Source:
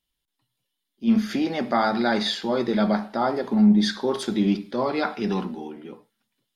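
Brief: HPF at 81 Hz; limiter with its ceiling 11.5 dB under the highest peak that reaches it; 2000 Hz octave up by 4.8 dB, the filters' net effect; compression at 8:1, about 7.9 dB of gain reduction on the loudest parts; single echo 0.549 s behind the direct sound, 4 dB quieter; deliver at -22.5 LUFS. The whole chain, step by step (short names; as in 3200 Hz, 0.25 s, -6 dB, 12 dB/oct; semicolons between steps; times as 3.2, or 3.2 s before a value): HPF 81 Hz; bell 2000 Hz +6.5 dB; compressor 8:1, threshold -21 dBFS; limiter -23 dBFS; echo 0.549 s -4 dB; gain +8 dB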